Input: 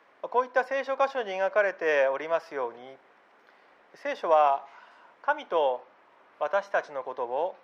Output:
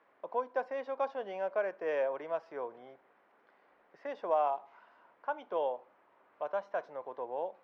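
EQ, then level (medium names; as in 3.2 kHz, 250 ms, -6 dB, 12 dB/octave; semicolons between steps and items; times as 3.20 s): treble shelf 3.1 kHz -10.5 dB; dynamic bell 1.7 kHz, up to -5 dB, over -42 dBFS, Q 1.2; distance through air 68 m; -6.5 dB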